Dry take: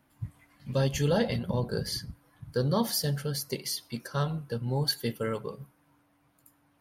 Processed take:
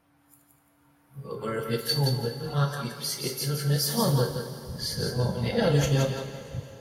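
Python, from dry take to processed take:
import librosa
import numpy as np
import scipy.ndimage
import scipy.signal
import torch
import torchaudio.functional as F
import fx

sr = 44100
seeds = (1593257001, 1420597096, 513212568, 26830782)

y = np.flip(x).copy()
y = fx.echo_thinned(y, sr, ms=171, feedback_pct=28, hz=420.0, wet_db=-5)
y = fx.rev_double_slope(y, sr, seeds[0], early_s=0.28, late_s=3.6, knee_db=-18, drr_db=1.5)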